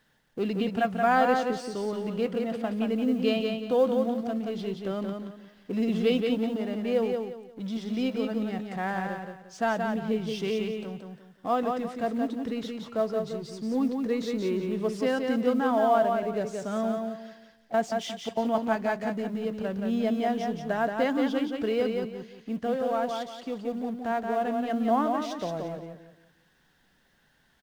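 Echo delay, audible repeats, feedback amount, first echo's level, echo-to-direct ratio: 176 ms, 3, 30%, -4.5 dB, -4.0 dB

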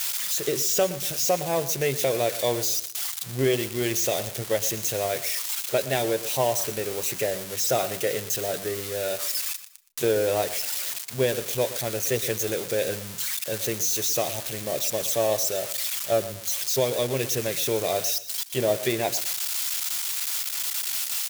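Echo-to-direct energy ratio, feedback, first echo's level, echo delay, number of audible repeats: -14.5 dB, 28%, -15.0 dB, 119 ms, 2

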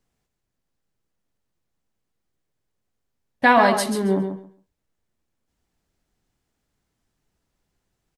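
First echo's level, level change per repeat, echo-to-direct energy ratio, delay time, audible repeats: -8.0 dB, -15.0 dB, -8.0 dB, 136 ms, 2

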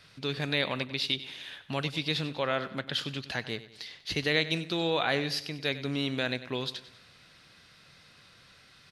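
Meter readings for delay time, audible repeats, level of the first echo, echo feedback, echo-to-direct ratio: 96 ms, 3, -15.0 dB, 44%, -14.0 dB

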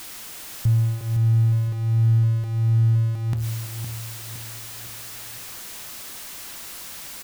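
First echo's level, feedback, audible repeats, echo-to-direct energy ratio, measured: -8.0 dB, 41%, 4, -7.0 dB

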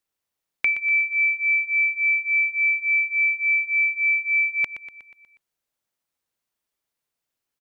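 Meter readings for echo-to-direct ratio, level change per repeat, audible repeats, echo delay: -10.5 dB, -5.0 dB, 5, 121 ms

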